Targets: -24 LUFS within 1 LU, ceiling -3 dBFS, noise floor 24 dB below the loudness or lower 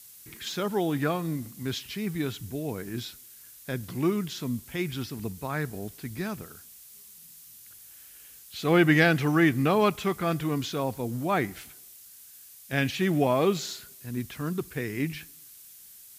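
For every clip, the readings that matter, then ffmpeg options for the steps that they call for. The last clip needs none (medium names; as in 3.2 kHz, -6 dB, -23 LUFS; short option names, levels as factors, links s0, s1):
noise floor -50 dBFS; noise floor target -52 dBFS; loudness -28.0 LUFS; peak level -7.5 dBFS; loudness target -24.0 LUFS
-> -af "afftdn=nr=6:nf=-50"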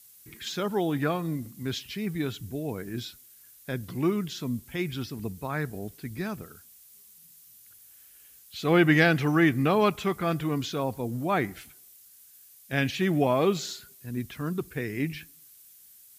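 noise floor -54 dBFS; loudness -28.0 LUFS; peak level -7.5 dBFS; loudness target -24.0 LUFS
-> -af "volume=1.58"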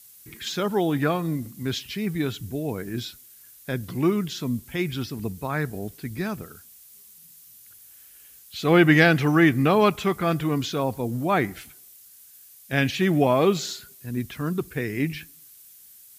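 loudness -24.0 LUFS; peak level -3.5 dBFS; noise floor -50 dBFS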